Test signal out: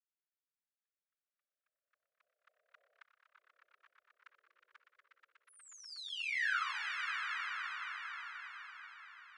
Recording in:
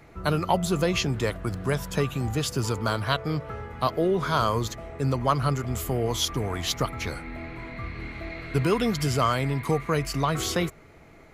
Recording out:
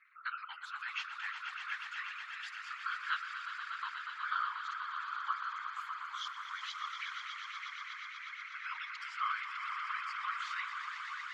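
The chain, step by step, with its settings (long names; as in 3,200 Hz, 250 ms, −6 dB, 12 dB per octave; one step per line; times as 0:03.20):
Butterworth high-pass 1,300 Hz 48 dB per octave
gate on every frequency bin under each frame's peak −20 dB strong
on a send: echo that builds up and dies away 121 ms, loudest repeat 5, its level −9 dB
on the sum: random phases in short frames
low-pass filter 1,800 Hz 12 dB per octave
level −3 dB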